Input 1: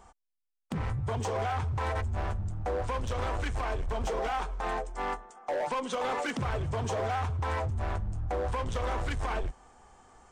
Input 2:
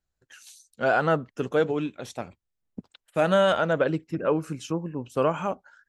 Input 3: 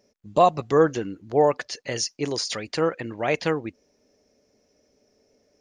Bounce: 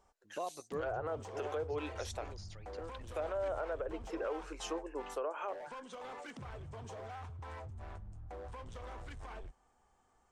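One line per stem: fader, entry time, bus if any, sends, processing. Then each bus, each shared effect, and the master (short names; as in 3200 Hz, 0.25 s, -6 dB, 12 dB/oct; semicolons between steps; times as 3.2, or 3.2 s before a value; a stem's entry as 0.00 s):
-15.5 dB, 0.00 s, no bus, no send, dry
-3.0 dB, 0.00 s, bus A, no send, HPF 400 Hz 24 dB/oct; treble ducked by the level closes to 820 Hz, closed at -18 dBFS
-17.0 dB, 0.00 s, bus A, no send, auto duck -10 dB, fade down 1.95 s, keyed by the second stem
bus A: 0.0 dB, resonant low shelf 240 Hz -9 dB, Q 1.5; compressor, threshold -32 dBFS, peak gain reduction 11.5 dB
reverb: off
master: limiter -29 dBFS, peak gain reduction 6.5 dB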